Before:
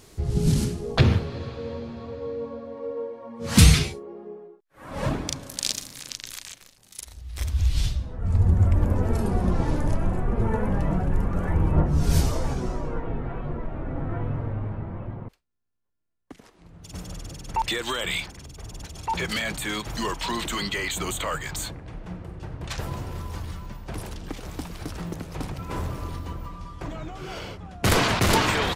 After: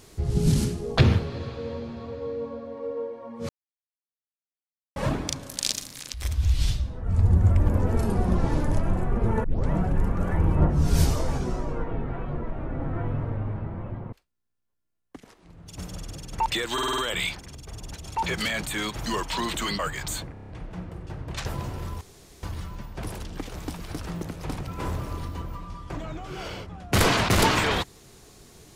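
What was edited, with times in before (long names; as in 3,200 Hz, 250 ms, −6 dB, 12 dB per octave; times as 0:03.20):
0:03.49–0:04.96: silence
0:06.14–0:07.30: remove
0:10.60: tape start 0.27 s
0:17.89: stutter 0.05 s, 6 plays
0:20.70–0:21.27: remove
0:21.81: stutter 0.03 s, 6 plays
0:23.34: splice in room tone 0.42 s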